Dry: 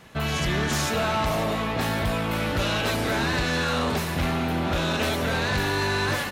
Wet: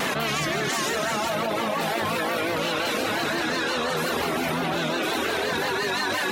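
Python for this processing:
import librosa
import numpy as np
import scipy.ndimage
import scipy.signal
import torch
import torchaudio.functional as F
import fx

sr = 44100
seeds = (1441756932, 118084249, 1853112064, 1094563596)

y = scipy.signal.sosfilt(scipy.signal.butter(2, 230.0, 'highpass', fs=sr, output='sos'), x)
y = fx.rev_gated(y, sr, seeds[0], gate_ms=490, shape='flat', drr_db=-2.0)
y = fx.vibrato(y, sr, rate_hz=5.7, depth_cents=83.0)
y = fx.dereverb_blind(y, sr, rt60_s=0.73)
y = fx.env_flatten(y, sr, amount_pct=100)
y = F.gain(torch.from_numpy(y), -6.0).numpy()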